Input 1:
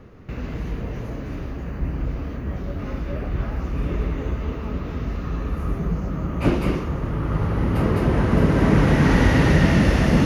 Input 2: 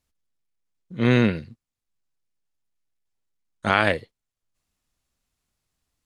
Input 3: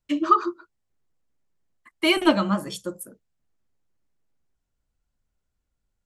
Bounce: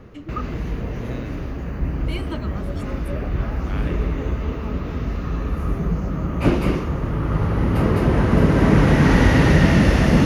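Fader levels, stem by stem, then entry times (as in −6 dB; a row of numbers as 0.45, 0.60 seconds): +2.0, −18.5, −14.0 decibels; 0.00, 0.00, 0.05 seconds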